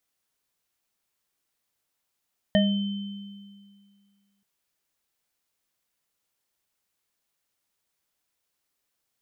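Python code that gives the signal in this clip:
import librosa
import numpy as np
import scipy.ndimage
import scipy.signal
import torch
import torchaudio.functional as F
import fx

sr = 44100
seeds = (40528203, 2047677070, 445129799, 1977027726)

y = fx.additive_free(sr, length_s=1.88, hz=200.0, level_db=-17.5, upper_db=(0.0, -8, -10), decay_s=2.05, upper_decays_s=(0.36, 0.21, 1.9), upper_hz=(623.0, 1830.0, 3080.0))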